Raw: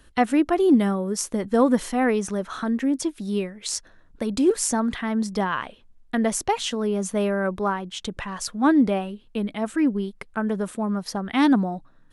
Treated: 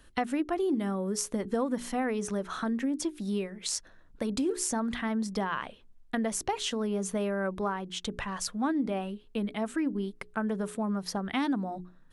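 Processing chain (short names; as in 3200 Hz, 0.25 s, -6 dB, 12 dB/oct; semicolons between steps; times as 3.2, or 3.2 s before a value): notches 60/120/180/240/300/360/420 Hz; compressor 4:1, threshold -24 dBFS, peak gain reduction 10 dB; gain -3 dB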